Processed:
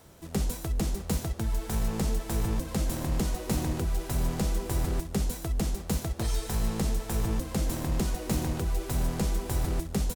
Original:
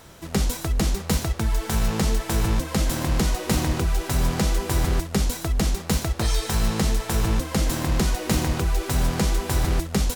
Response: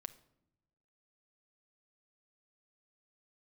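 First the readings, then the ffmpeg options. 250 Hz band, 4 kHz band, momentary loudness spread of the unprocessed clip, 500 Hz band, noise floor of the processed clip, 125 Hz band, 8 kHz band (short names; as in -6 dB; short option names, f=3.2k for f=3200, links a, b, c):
-6.0 dB, -10.5 dB, 2 LU, -6.5 dB, -40 dBFS, -6.0 dB, -7.5 dB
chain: -filter_complex "[0:a]acrossover=split=880|7100[a][b][c];[a]aecho=1:1:141:0.168[d];[b]aeval=exprs='max(val(0),0)':c=same[e];[d][e][c]amix=inputs=3:normalize=0,volume=-6dB"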